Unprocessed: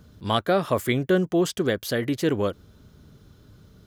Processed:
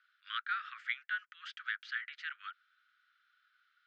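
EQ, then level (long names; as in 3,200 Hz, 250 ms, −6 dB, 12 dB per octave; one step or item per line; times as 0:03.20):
Butterworth high-pass 1,300 Hz 96 dB per octave
high-frequency loss of the air 120 metres
head-to-tape spacing loss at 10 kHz 40 dB
+4.0 dB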